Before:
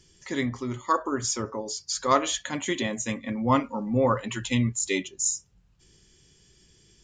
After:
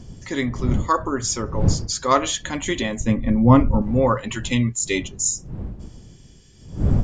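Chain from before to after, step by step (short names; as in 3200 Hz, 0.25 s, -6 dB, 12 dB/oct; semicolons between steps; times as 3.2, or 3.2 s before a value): wind noise 130 Hz -31 dBFS; 3–3.82 tilt -3.5 dB/oct; gain +4 dB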